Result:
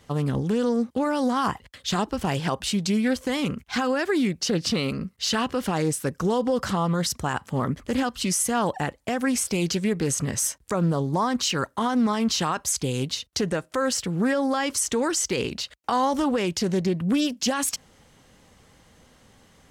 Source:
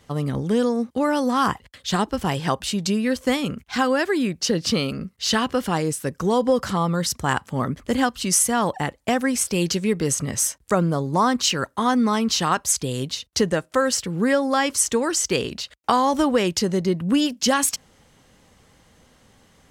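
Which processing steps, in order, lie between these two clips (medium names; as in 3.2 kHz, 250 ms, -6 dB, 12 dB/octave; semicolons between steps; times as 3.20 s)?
peak limiter -15 dBFS, peak gain reduction 10 dB; loudspeaker Doppler distortion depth 0.17 ms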